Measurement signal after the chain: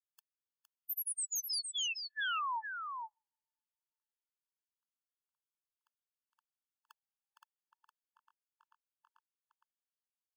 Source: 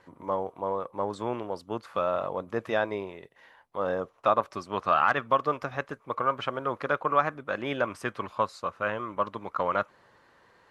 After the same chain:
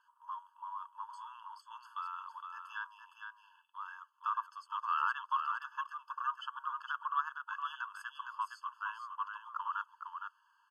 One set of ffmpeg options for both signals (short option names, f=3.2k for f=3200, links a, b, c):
-filter_complex "[0:a]asplit=2[a][b];[b]aecho=0:1:462:0.501[c];[a][c]amix=inputs=2:normalize=0,afftfilt=real='re*eq(mod(floor(b*sr/1024/870),2),1)':imag='im*eq(mod(floor(b*sr/1024/870),2),1)':win_size=1024:overlap=0.75,volume=-8.5dB"